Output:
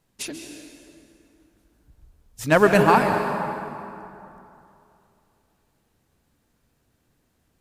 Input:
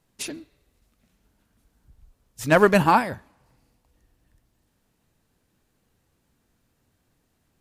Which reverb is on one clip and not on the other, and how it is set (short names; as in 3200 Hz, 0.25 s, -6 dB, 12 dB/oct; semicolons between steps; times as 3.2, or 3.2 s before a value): plate-style reverb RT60 2.8 s, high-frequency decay 0.65×, pre-delay 0.12 s, DRR 4.5 dB